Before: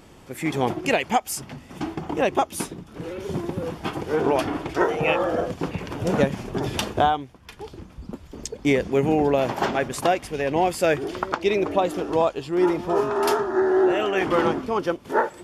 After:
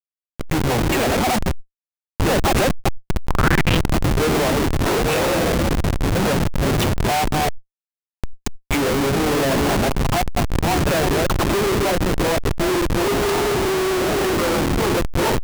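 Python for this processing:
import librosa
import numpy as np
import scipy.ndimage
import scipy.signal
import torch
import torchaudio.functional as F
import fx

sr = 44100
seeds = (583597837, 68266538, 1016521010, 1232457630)

y = fx.reverse_delay(x, sr, ms=200, wet_db=-6)
y = fx.hum_notches(y, sr, base_hz=60, count=8)
y = fx.peak_eq(y, sr, hz=330.0, db=-15.0, octaves=1.5, at=(1.41, 2.1), fade=0.02)
y = fx.fixed_phaser(y, sr, hz=1800.0, stages=6, at=(9.79, 10.76))
y = fx.dispersion(y, sr, late='lows', ms=97.0, hz=2100.0)
y = fx.schmitt(y, sr, flips_db=-24.5)
y = fx.rider(y, sr, range_db=4, speed_s=2.0)
y = fx.peak_eq(y, sr, hz=fx.line((3.28, 910.0), (3.76, 3100.0)), db=14.0, octaves=0.76, at=(3.28, 3.76), fade=0.02)
y = fx.sustainer(y, sr, db_per_s=37.0)
y = F.gain(torch.from_numpy(y), 5.5).numpy()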